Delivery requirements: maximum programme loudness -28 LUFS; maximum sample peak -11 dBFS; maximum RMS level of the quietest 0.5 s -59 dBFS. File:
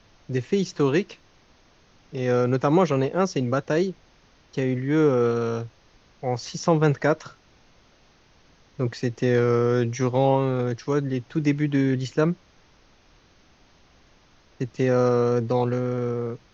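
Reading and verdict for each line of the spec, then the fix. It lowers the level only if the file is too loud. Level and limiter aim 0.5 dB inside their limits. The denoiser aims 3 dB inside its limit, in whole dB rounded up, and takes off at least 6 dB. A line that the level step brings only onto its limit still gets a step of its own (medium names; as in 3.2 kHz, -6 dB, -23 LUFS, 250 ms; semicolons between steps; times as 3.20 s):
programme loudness -24.0 LUFS: fail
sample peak -7.0 dBFS: fail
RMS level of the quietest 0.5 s -57 dBFS: fail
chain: trim -4.5 dB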